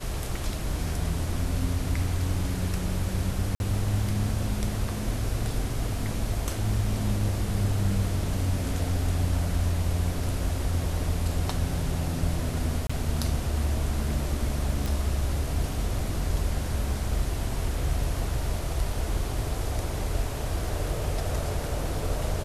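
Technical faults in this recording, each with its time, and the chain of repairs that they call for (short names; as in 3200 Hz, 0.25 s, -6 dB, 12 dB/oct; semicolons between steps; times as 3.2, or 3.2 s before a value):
3.55–3.6 gap 51 ms
12.87–12.89 gap 25 ms
14.86 pop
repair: de-click; interpolate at 3.55, 51 ms; interpolate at 12.87, 25 ms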